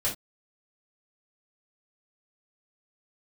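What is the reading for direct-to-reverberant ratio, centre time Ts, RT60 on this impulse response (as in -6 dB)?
-8.0 dB, 22 ms, not exponential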